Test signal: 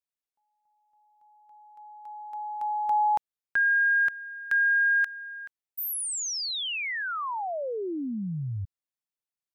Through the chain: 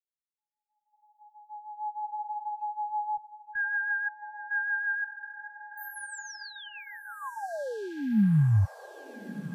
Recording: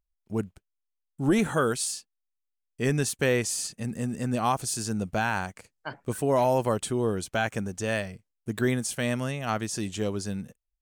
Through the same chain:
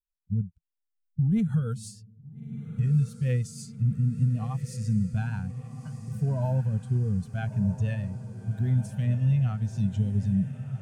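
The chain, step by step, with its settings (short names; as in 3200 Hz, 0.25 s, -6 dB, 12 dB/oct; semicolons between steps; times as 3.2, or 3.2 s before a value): per-bin expansion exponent 1.5; recorder AGC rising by 31 dB/s, up to +33 dB; resonant low shelf 230 Hz +11.5 dB, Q 3; harmonic-percussive split percussive -15 dB; limiter -13 dBFS; rotary speaker horn 6.3 Hz; diffused feedback echo 1.353 s, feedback 62%, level -12 dB; gain -4 dB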